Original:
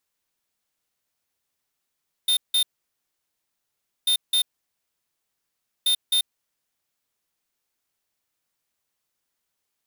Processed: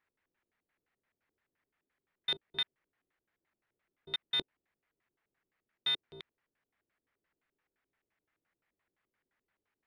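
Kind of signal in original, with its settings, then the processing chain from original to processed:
beep pattern square 3630 Hz, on 0.09 s, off 0.17 s, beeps 2, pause 1.44 s, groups 3, -20 dBFS
LFO low-pass square 5.8 Hz 380–1900 Hz

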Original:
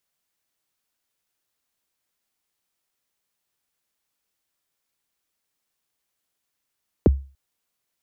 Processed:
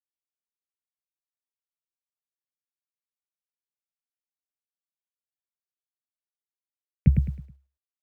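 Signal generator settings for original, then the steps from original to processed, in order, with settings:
kick drum length 0.29 s, from 550 Hz, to 68 Hz, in 20 ms, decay 0.35 s, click off, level -8 dB
EQ curve 100 Hz 0 dB, 140 Hz +9 dB, 210 Hz -2 dB, 350 Hz -26 dB, 570 Hz -19 dB, 1000 Hz -30 dB, 1600 Hz -5 dB, 2300 Hz +11 dB, 3700 Hz -15 dB, 5600 Hz -19 dB; bit-crush 11-bit; on a send: feedback echo 0.106 s, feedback 33%, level -5 dB

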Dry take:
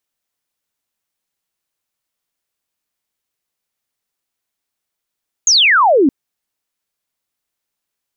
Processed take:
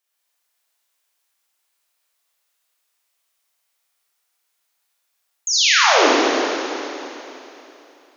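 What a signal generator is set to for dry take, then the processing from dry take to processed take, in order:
laser zap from 6900 Hz, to 250 Hz, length 0.62 s sine, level -7.5 dB
HPF 590 Hz 12 dB/oct; reverse; compressor 12:1, threshold -20 dBFS; reverse; Schroeder reverb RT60 3.1 s, combs from 27 ms, DRR -7.5 dB

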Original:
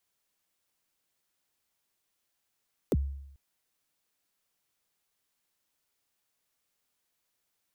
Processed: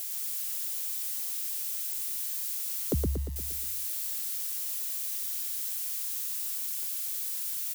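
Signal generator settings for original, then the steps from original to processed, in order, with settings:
kick drum length 0.44 s, from 550 Hz, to 69 Hz, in 38 ms, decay 0.81 s, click on, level -20.5 dB
switching spikes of -32.5 dBFS; feedback echo 0.117 s, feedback 52%, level -3 dB

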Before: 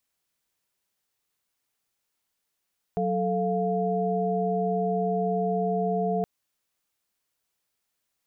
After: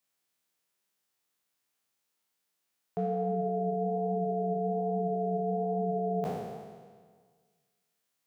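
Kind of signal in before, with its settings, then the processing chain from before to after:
chord F#3/A4/F5 sine, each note -27.5 dBFS 3.27 s
spectral trails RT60 1.68 s; HPF 120 Hz; flange 1.2 Hz, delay 4.5 ms, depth 8.2 ms, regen +81%

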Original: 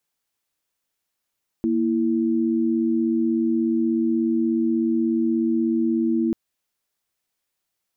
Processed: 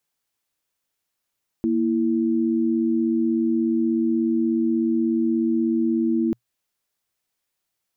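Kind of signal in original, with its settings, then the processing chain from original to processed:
chord A#3/E4 sine, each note -21 dBFS 4.69 s
bell 120 Hz +3 dB 0.24 oct

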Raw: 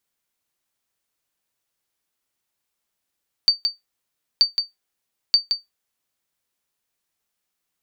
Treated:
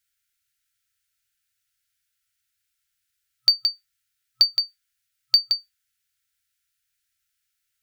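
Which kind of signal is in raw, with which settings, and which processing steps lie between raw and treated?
sonar ping 4600 Hz, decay 0.16 s, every 0.93 s, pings 3, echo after 0.17 s, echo -6.5 dB -6 dBFS
FFT band-reject 120–1300 Hz; in parallel at -10 dB: soft clip -20.5 dBFS

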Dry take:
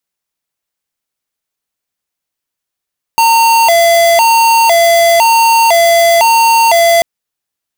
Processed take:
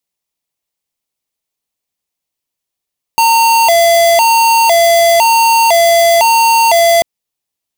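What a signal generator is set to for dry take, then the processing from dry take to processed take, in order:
siren hi-lo 677–915 Hz 0.99/s square -7.5 dBFS 3.84 s
bell 1500 Hz -8 dB 0.56 oct

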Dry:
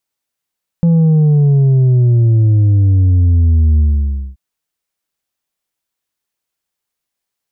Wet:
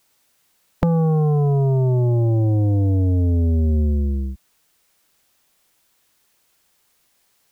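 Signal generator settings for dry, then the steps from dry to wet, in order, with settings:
sub drop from 170 Hz, over 3.53 s, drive 4 dB, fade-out 0.57 s, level -7.5 dB
spectral compressor 2:1

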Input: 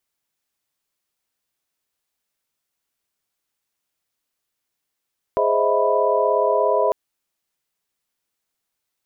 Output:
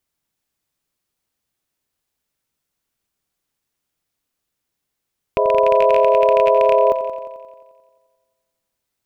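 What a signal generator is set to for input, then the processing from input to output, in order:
chord G#4/C5/D#5/E5/B5 sine, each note -22 dBFS 1.55 s
rattling part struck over -30 dBFS, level -13 dBFS; low shelf 340 Hz +8.5 dB; on a send: multi-head echo 88 ms, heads first and second, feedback 54%, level -14 dB

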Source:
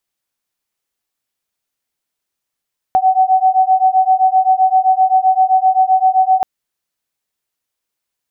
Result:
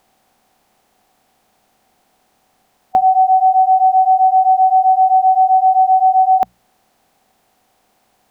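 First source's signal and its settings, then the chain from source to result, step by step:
beating tones 750 Hz, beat 7.7 Hz, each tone -12 dBFS 3.48 s
per-bin compression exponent 0.6; bell 220 Hz +6.5 dB 0.44 oct; notches 60/120/180 Hz

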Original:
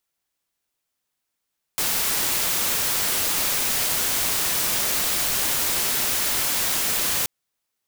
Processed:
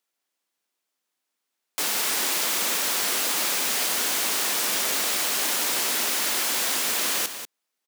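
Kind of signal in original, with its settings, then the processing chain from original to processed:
noise white, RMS -23 dBFS 5.48 s
HPF 210 Hz 24 dB/oct; high shelf 10000 Hz -5 dB; on a send: echo 0.191 s -10 dB

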